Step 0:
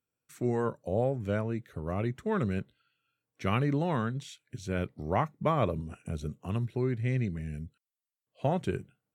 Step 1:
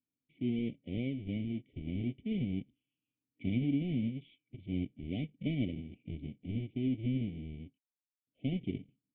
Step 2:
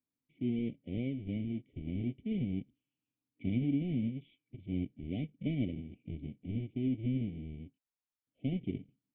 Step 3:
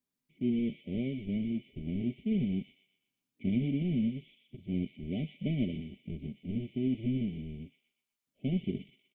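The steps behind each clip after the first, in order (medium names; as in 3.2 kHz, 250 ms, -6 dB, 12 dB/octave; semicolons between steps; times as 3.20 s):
square wave that keeps the level; FFT band-reject 760–1900 Hz; cascade formant filter i
treble shelf 2.9 kHz -8 dB
comb 5 ms, depth 48%; feedback echo behind a high-pass 122 ms, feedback 42%, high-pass 2.1 kHz, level -3.5 dB; trim +2 dB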